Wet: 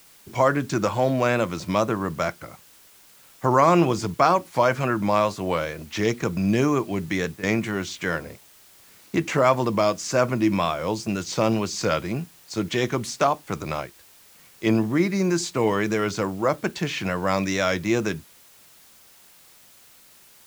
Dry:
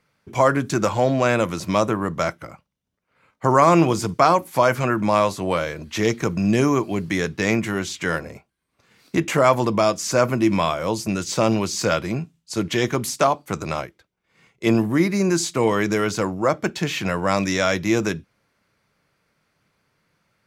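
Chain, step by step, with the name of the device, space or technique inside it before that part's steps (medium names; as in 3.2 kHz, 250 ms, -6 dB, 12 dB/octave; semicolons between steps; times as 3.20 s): worn cassette (low-pass 7.3 kHz; wow and flutter; level dips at 7.37/8.36 s, 61 ms -12 dB; white noise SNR 28 dB); trim -2.5 dB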